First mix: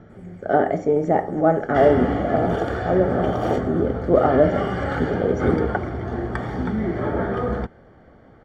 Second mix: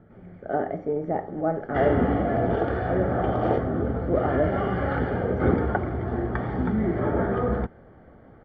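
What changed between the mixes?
speech -7.0 dB; master: add air absorption 350 m

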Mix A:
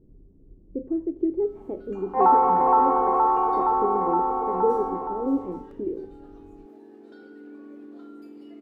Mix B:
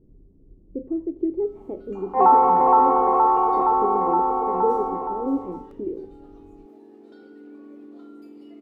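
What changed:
second sound +3.0 dB; master: add bell 1600 Hz -7.5 dB 0.25 oct

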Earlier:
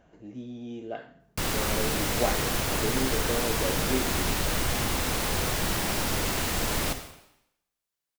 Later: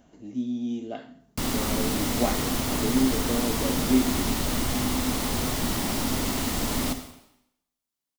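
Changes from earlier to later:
speech: add high shelf 3400 Hz +11.5 dB; master: add thirty-one-band EQ 250 Hz +12 dB, 500 Hz -3 dB, 1600 Hz -6 dB, 2500 Hz -4 dB

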